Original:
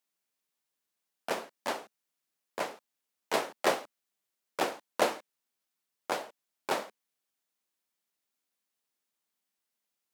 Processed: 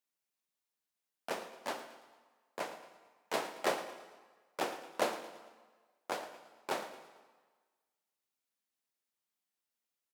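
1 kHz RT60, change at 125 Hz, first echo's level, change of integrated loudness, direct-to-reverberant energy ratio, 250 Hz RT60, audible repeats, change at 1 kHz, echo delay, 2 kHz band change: 1.5 s, −5.0 dB, −15.0 dB, −5.5 dB, 9.0 dB, 1.3 s, 4, −5.0 dB, 112 ms, −5.0 dB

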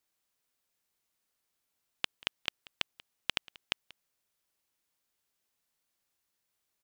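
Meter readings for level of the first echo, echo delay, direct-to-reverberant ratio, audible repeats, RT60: −22.0 dB, 186 ms, no reverb audible, 1, no reverb audible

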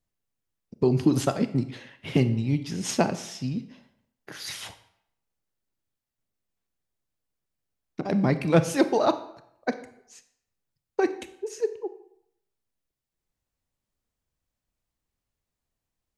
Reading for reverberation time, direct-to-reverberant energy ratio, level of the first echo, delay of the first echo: 0.70 s, 11.0 dB, no echo audible, no echo audible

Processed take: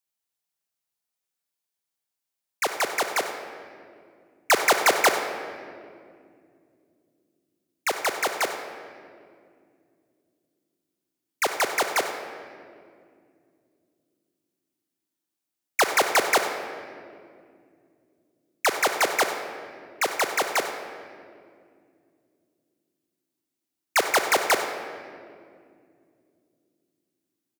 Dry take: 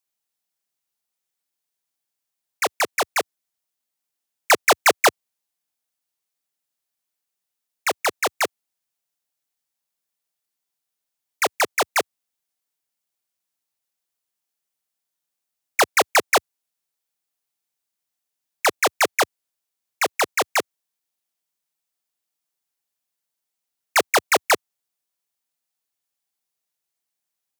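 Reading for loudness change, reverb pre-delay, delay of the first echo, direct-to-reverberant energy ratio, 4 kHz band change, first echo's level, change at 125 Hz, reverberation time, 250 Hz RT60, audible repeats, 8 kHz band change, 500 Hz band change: −3.5 dB, 38 ms, 96 ms, 6.0 dB, −3.0 dB, −14.5 dB, can't be measured, 2.3 s, 4.2 s, 1, −3.0 dB, −2.5 dB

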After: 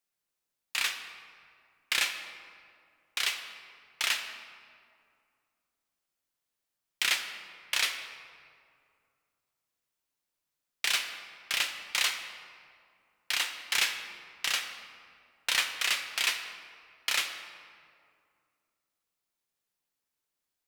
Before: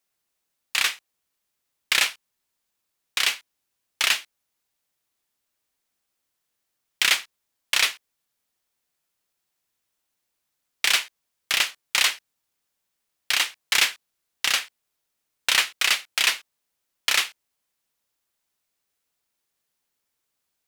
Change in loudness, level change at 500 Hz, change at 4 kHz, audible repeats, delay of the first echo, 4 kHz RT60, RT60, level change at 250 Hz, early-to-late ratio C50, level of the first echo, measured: −7.5 dB, −7.0 dB, −7.0 dB, no echo audible, no echo audible, 1.3 s, 2.3 s, −6.5 dB, 7.5 dB, no echo audible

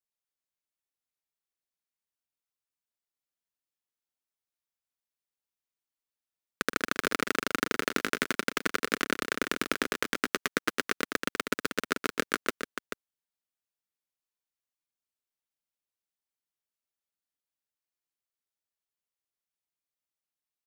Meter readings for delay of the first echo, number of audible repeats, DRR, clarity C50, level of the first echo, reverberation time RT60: 122 ms, 2, no reverb audible, no reverb audible, −13.0 dB, no reverb audible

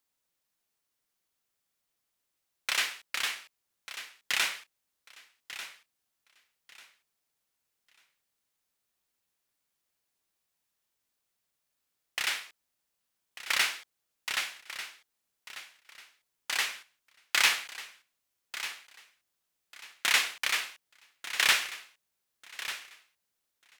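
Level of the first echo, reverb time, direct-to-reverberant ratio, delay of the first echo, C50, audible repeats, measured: −13.0 dB, no reverb audible, no reverb audible, 1,193 ms, no reverb audible, 2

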